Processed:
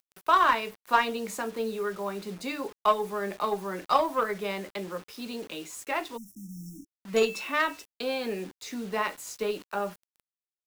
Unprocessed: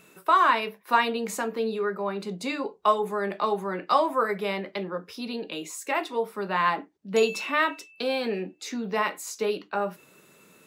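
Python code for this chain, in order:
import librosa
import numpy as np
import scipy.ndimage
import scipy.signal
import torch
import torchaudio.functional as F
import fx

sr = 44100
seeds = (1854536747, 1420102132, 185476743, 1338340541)

y = fx.cheby_harmonics(x, sr, harmonics=(3, 6, 7), levels_db=(-25, -36, -31), full_scale_db=-6.5)
y = fx.quant_dither(y, sr, seeds[0], bits=8, dither='none')
y = fx.spec_erase(y, sr, start_s=6.17, length_s=0.7, low_hz=330.0, high_hz=5300.0)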